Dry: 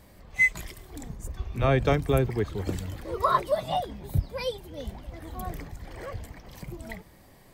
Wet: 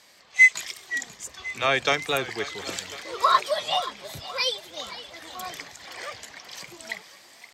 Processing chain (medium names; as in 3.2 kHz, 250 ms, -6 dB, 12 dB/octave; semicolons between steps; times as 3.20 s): frequency weighting ITU-R 468; level rider gain up to 3.5 dB; high-pass 94 Hz 6 dB/octave; peaking EQ 9.7 kHz -14 dB 0.36 oct; on a send: thinning echo 526 ms, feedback 59%, level -15 dB; on the sum: warped record 45 rpm, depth 100 cents